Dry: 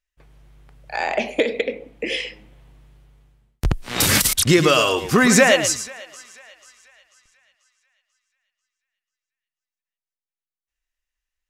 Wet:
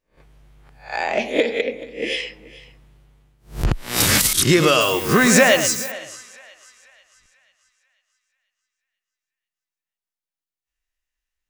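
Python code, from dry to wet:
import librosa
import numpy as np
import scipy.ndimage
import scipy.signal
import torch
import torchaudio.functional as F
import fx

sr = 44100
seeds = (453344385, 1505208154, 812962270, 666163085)

y = fx.spec_swells(x, sr, rise_s=0.33)
y = y + 10.0 ** (-19.5 / 20.0) * np.pad(y, (int(431 * sr / 1000.0), 0))[:len(y)]
y = fx.dmg_noise_colour(y, sr, seeds[0], colour='violet', level_db=-31.0, at=(4.8, 5.9), fade=0.02)
y = y * 10.0 ** (-1.0 / 20.0)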